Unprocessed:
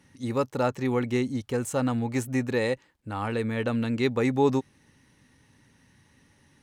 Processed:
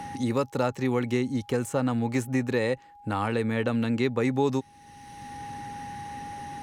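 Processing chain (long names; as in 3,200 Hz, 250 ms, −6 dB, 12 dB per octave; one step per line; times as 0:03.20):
steady tone 820 Hz −54 dBFS
multiband upward and downward compressor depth 70%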